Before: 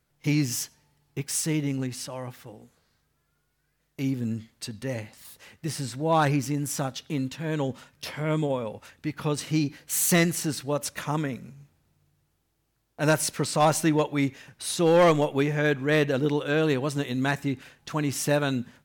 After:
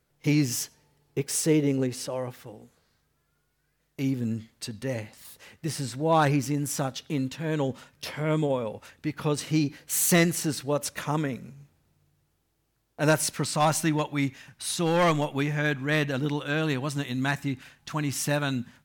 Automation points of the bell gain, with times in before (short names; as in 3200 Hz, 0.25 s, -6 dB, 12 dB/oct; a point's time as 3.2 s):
bell 450 Hz 0.87 oct
0.63 s +4.5 dB
1.39 s +11.5 dB
2.06 s +11.5 dB
2.49 s +1.5 dB
13.03 s +1.5 dB
13.61 s -8 dB